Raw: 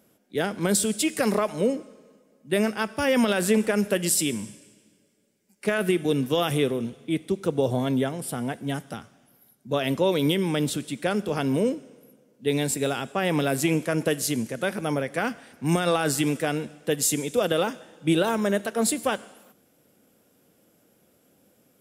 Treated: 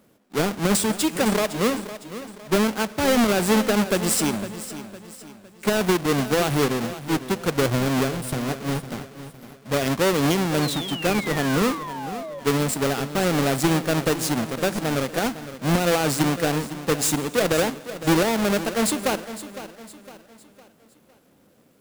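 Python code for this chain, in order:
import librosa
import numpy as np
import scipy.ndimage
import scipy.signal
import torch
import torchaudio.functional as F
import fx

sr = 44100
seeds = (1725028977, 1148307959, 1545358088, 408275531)

y = fx.halfwave_hold(x, sr)
y = fx.spec_paint(y, sr, seeds[0], shape='fall', start_s=10.62, length_s=1.78, low_hz=540.0, high_hz=4400.0, level_db=-32.0)
y = fx.echo_feedback(y, sr, ms=508, feedback_pct=42, wet_db=-13.5)
y = y * 10.0 ** (-2.0 / 20.0)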